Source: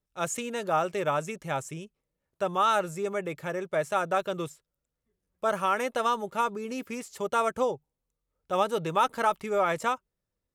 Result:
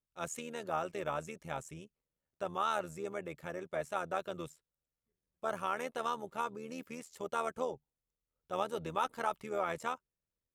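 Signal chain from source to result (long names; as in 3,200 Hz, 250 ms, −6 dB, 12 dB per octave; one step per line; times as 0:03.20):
amplitude modulation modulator 80 Hz, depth 50%
level −6.5 dB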